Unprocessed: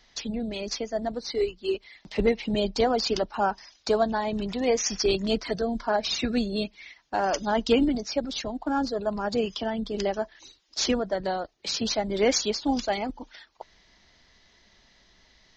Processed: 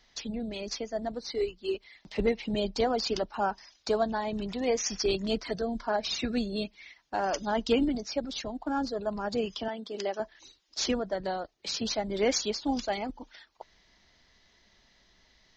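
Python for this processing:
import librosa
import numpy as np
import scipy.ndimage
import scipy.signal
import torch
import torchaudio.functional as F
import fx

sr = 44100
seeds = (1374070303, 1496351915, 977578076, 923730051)

y = fx.highpass(x, sr, hz=320.0, slope=12, at=(9.68, 10.2))
y = y * 10.0 ** (-4.0 / 20.0)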